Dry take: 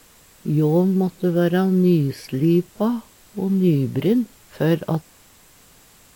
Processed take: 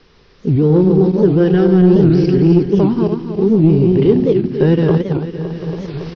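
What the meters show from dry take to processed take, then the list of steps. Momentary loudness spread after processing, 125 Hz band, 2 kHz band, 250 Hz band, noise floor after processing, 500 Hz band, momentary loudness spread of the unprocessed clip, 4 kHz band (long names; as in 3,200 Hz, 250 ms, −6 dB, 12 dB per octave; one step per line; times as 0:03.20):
13 LU, +8.0 dB, +3.0 dB, +7.5 dB, −48 dBFS, +9.5 dB, 10 LU, can't be measured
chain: feedback delay that plays each chunk backwards 140 ms, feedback 70%, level −5 dB
in parallel at −1 dB: output level in coarse steps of 23 dB
on the sum: low-shelf EQ 99 Hz +7 dB
soft clipping −6 dBFS, distortion −18 dB
thirty-one-band graphic EQ 160 Hz +4 dB, 400 Hz +12 dB, 630 Hz −4 dB
single-tap delay 733 ms −20 dB
automatic gain control gain up to 10.5 dB
Butterworth low-pass 5,600 Hz 96 dB per octave
wow of a warped record 78 rpm, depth 250 cents
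level −1 dB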